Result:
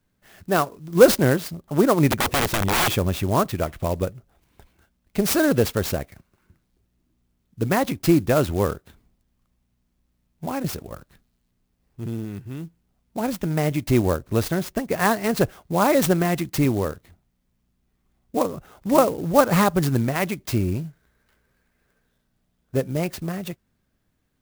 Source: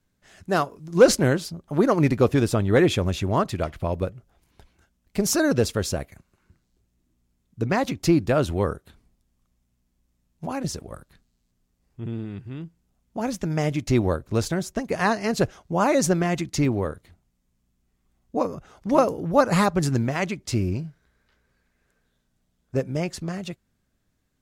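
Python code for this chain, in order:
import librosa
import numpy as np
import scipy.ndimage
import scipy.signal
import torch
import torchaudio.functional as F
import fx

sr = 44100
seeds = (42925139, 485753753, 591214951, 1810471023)

y = fx.low_shelf(x, sr, hz=71.0, db=-2.5)
y = fx.overflow_wrap(y, sr, gain_db=17.0, at=(2.1, 2.9))
y = fx.clock_jitter(y, sr, seeds[0], jitter_ms=0.037)
y = y * 10.0 ** (2.0 / 20.0)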